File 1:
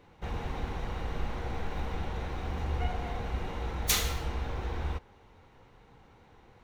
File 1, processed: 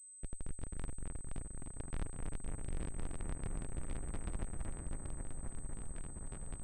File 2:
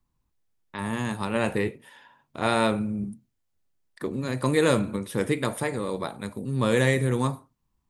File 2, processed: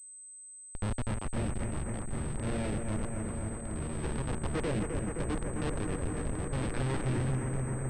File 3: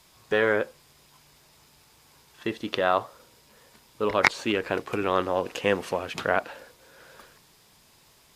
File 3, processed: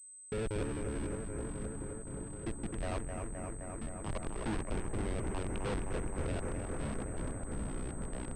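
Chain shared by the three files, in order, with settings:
random holes in the spectrogram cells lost 28%; in parallel at -1.5 dB: compression 12:1, threshold -38 dBFS; on the sum: distance through air 250 m; Schmitt trigger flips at -25 dBFS; rotary cabinet horn 0.85 Hz; on a send: bucket-brigade echo 260 ms, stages 4096, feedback 83%, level -6 dB; on the sum: ever faster or slower copies 122 ms, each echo -7 st, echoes 3, each echo -6 dB; waveshaping leveller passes 2; class-D stage that switches slowly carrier 8.2 kHz; trim -7 dB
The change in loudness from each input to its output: -11.5 LU, -8.0 LU, -13.0 LU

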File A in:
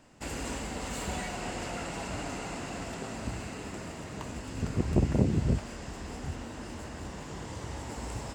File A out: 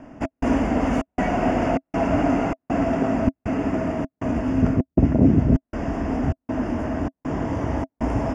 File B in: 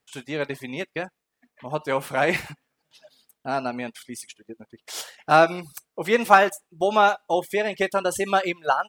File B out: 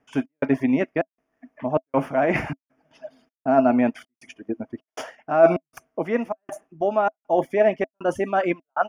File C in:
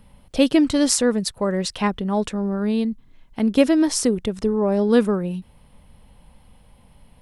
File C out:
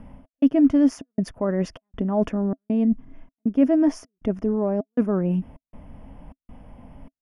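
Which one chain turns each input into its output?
reverse; compression 20:1, threshold -27 dBFS; reverse; trance gate "xxx..xxxx" 178 bpm -60 dB; boxcar filter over 11 samples; small resonant body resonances 270/650 Hz, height 11 dB, ringing for 55 ms; normalise loudness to -23 LUFS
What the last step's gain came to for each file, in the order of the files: +13.0 dB, +9.0 dB, +6.0 dB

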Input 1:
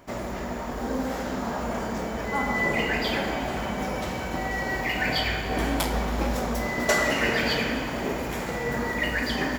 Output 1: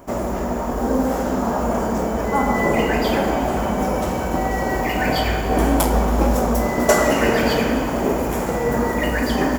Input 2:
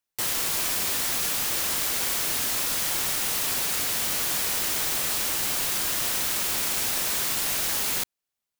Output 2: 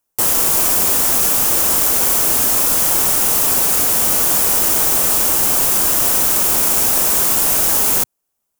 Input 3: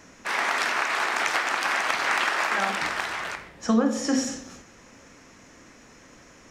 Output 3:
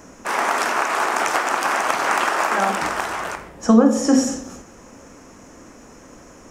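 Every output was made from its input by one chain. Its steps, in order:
graphic EQ 125/2000/4000 Hz -4/-8/-10 dB; peak normalisation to -1.5 dBFS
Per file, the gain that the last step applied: +10.0 dB, +13.5 dB, +9.5 dB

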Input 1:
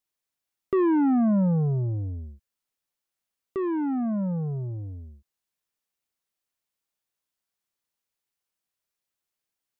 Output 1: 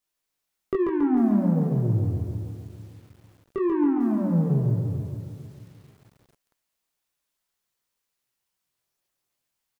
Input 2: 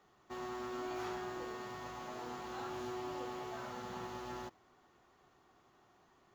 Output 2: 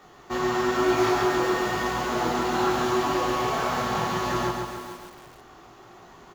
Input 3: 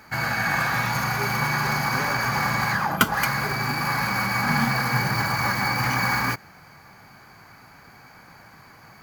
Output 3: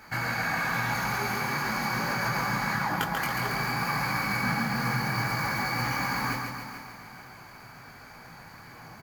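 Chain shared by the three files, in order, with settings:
dynamic bell 280 Hz, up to +3 dB, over -34 dBFS, Q 1.1; compression 12:1, threshold -26 dBFS; chorus voices 6, 0.92 Hz, delay 21 ms, depth 4.2 ms; on a send: feedback delay 139 ms, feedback 55%, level -5 dB; on the sum: bit-crushed delay 445 ms, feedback 35%, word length 9-bit, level -13 dB; peak normalisation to -12 dBFS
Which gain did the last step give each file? +7.0 dB, +20.5 dB, +2.5 dB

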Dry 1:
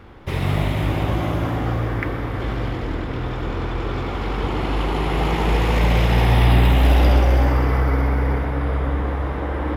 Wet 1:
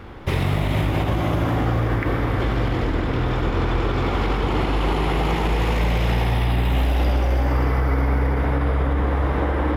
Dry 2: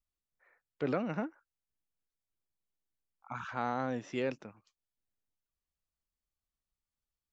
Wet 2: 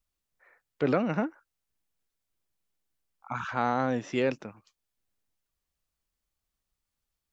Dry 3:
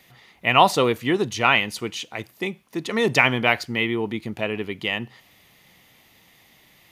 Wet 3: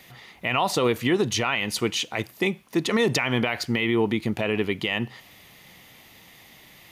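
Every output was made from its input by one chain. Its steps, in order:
compression 4:1, threshold -20 dBFS; peak limiter -17 dBFS; peak normalisation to -12 dBFS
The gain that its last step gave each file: +5.0 dB, +7.0 dB, +5.0 dB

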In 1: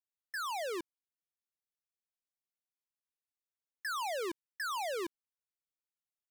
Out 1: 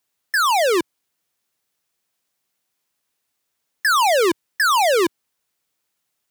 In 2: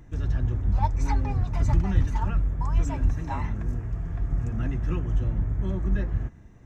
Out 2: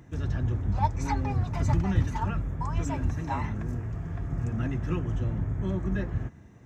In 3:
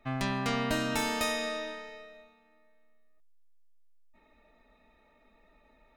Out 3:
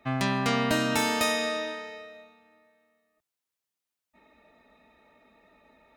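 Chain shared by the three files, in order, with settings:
high-pass 83 Hz 12 dB/octave; peak normalisation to -12 dBFS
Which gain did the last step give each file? +20.0 dB, +1.5 dB, +5.0 dB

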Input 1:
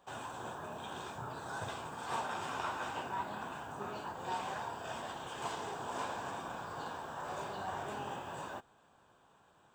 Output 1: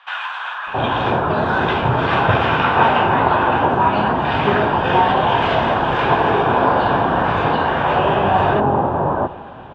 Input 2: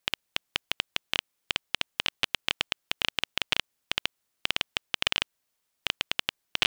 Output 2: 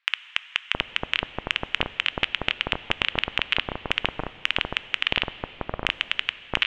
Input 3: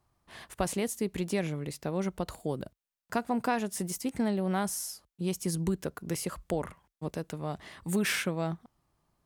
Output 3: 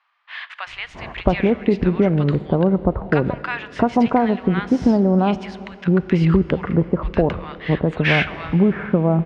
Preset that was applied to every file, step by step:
low-pass 3 kHz 24 dB/octave; bass shelf 62 Hz +8.5 dB; compression 2:1, threshold -36 dBFS; bands offset in time highs, lows 670 ms, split 1.2 kHz; plate-style reverb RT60 3.3 s, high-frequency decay 0.95×, DRR 15 dB; peak normalisation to -1.5 dBFS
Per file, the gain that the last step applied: +27.0 dB, +14.0 dB, +19.5 dB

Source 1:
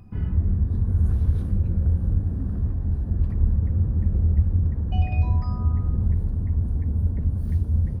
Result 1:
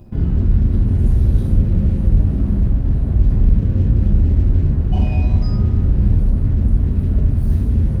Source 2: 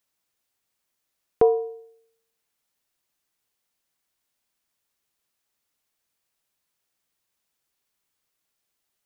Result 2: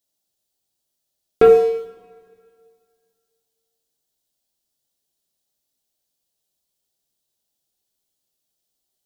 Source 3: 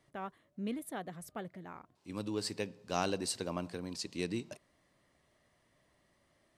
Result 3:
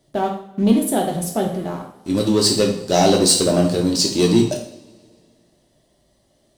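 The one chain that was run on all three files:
high-order bell 1.6 kHz -11.5 dB; waveshaping leveller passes 2; two-slope reverb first 0.52 s, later 2.2 s, from -22 dB, DRR -0.5 dB; peak normalisation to -2 dBFS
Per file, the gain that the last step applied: +1.0 dB, +2.5 dB, +13.0 dB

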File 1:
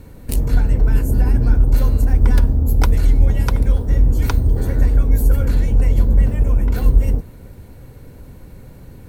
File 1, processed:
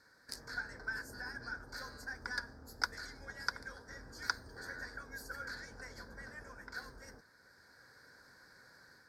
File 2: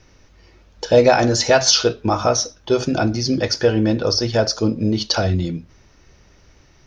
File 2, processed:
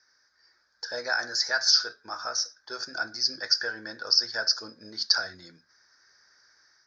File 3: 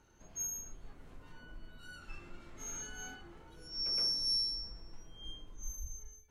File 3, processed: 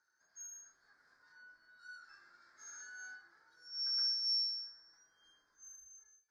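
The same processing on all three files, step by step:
level rider gain up to 5 dB; two resonant band-passes 2.8 kHz, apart 1.6 oct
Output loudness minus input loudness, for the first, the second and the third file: -26.0 LU, -8.5 LU, 0.0 LU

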